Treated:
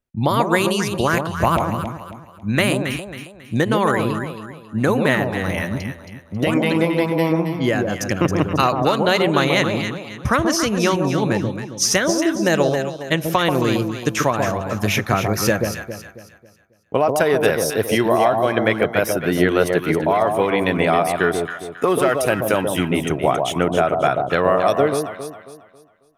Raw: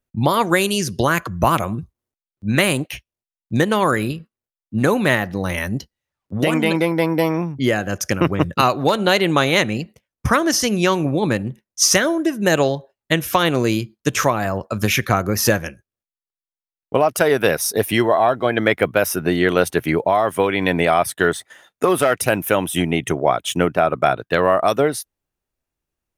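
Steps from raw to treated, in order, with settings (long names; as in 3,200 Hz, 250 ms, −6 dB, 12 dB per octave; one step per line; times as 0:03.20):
high-shelf EQ 6,900 Hz −4.5 dB
on a send: delay that swaps between a low-pass and a high-pass 136 ms, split 960 Hz, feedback 59%, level −3.5 dB
on the sum: level −1.5 dB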